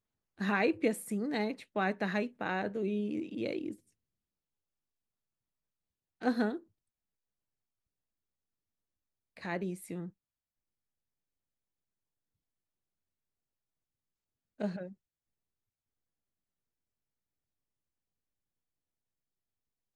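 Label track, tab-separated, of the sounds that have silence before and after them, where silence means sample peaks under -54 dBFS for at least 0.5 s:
6.210000	6.630000	sound
9.370000	10.100000	sound
14.600000	14.930000	sound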